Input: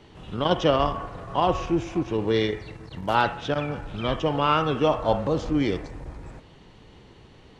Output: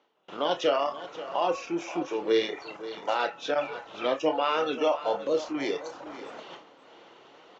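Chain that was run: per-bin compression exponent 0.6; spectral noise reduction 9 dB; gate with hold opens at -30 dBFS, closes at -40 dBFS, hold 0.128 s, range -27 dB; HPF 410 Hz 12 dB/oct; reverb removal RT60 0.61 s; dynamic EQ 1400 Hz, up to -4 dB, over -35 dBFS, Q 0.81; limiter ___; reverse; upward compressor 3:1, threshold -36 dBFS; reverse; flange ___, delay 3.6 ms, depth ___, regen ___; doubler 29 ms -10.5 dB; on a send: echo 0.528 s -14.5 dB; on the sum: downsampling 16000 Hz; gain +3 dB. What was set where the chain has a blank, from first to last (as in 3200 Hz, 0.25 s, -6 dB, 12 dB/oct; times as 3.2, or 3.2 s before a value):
-14.5 dBFS, 0.64 Hz, 5.5 ms, +62%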